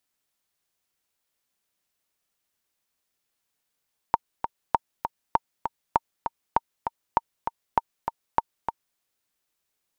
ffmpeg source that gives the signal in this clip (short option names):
-f lavfi -i "aevalsrc='pow(10,(-5.5-7.5*gte(mod(t,2*60/198),60/198))/20)*sin(2*PI*921*mod(t,60/198))*exp(-6.91*mod(t,60/198)/0.03)':d=4.84:s=44100"